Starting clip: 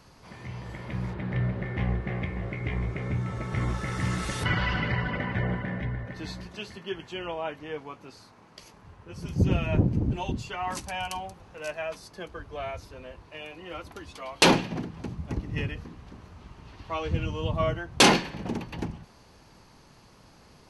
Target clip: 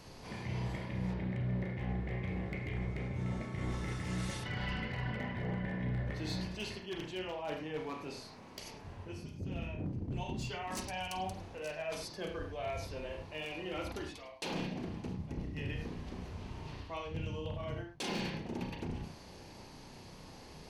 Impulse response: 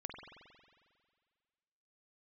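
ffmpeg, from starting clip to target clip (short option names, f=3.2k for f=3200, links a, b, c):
-filter_complex "[0:a]equalizer=f=1.3k:t=o:w=0.74:g=-7,bandreject=f=60:t=h:w=6,bandreject=f=120:t=h:w=6,bandreject=f=180:t=h:w=6,areverse,acompressor=threshold=-39dB:ratio=20,areverse,aeval=exprs='0.0188*(abs(mod(val(0)/0.0188+3,4)-2)-1)':c=same[a];[1:a]atrim=start_sample=2205,atrim=end_sample=6615,asetrate=61740,aresample=44100[b];[a][b]afir=irnorm=-1:irlink=0,volume=10dB"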